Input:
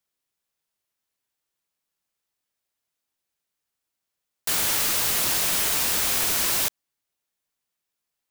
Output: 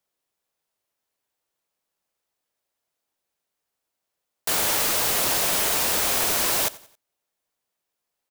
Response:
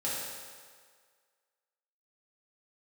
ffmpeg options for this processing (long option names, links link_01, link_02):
-filter_complex "[0:a]equalizer=frequency=600:width_type=o:width=1.8:gain=7,asplit=2[link_01][link_02];[link_02]aecho=0:1:90|180|270:0.0944|0.0387|0.0159[link_03];[link_01][link_03]amix=inputs=2:normalize=0"